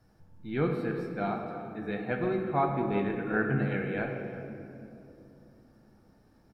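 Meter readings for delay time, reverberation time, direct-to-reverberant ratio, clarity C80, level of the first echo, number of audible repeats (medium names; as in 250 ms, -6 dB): 351 ms, 2.9 s, 2.0 dB, 4.5 dB, -17.0 dB, 1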